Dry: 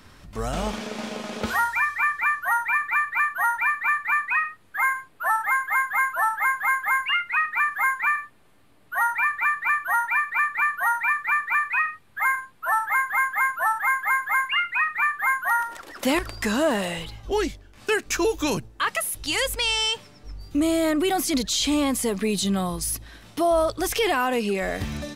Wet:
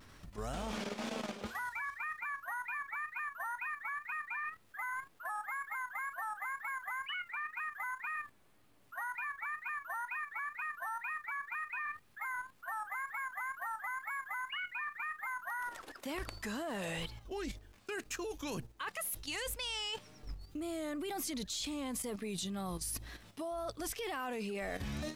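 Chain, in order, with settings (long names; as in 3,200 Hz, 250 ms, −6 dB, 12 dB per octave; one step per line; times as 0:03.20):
reversed playback
downward compressor 8 to 1, threshold −30 dBFS, peak gain reduction 13 dB
reversed playback
pitch vibrato 2 Hz 86 cents
bit reduction 11 bits
output level in coarse steps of 9 dB
level −3 dB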